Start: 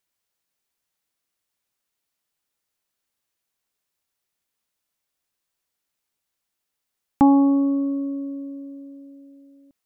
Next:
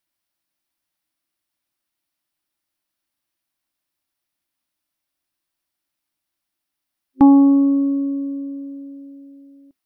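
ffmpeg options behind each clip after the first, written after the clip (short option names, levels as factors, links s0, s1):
-af "superequalizer=6b=1.78:7b=0.251:15b=0.562"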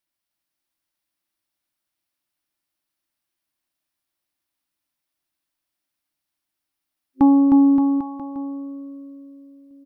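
-af "aecho=1:1:310|573.5|797.5|987.9|1150:0.631|0.398|0.251|0.158|0.1,volume=0.668"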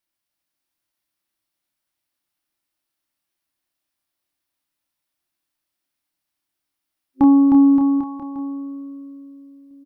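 -filter_complex "[0:a]asplit=2[s0][s1];[s1]adelay=28,volume=0.562[s2];[s0][s2]amix=inputs=2:normalize=0"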